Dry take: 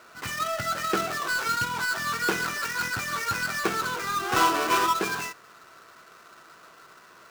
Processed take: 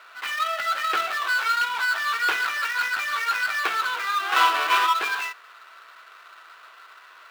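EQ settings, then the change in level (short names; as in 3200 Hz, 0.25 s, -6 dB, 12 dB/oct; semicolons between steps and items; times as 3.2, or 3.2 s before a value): HPF 920 Hz 12 dB/oct; resonant high shelf 4500 Hz -7.5 dB, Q 1.5; +4.5 dB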